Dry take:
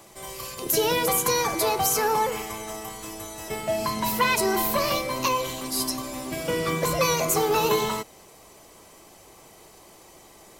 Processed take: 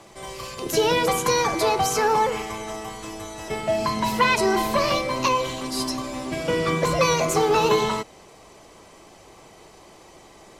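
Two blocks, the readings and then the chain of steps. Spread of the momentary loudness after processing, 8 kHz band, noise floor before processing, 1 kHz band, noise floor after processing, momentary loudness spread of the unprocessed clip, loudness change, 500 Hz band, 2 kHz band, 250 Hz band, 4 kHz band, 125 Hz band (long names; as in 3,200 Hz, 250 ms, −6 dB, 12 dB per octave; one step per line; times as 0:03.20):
14 LU, −2.5 dB, −51 dBFS, +3.0 dB, −49 dBFS, 13 LU, +2.0 dB, +3.5 dB, +3.0 dB, +3.5 dB, +1.5 dB, +3.5 dB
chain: high-frequency loss of the air 63 metres
level +3.5 dB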